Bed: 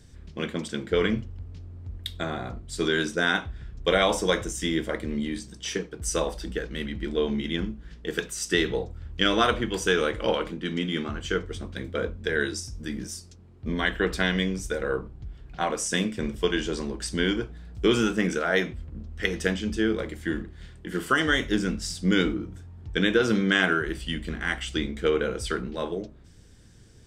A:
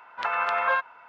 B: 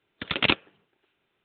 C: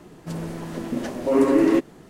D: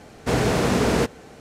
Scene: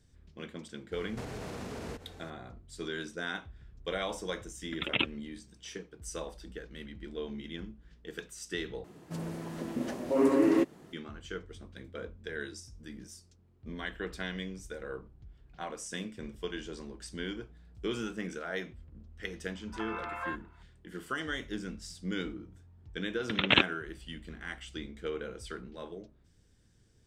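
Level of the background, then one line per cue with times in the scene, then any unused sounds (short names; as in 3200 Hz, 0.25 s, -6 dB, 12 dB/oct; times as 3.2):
bed -13 dB
0.91 add D -8.5 dB, fades 0.02 s + compressor 16:1, threshold -28 dBFS
4.51 add B -7.5 dB + spectral contrast raised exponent 1.6
8.84 replace with C -7 dB + HPF 52 Hz
19.55 add A -14 dB
23.08 add B -1.5 dB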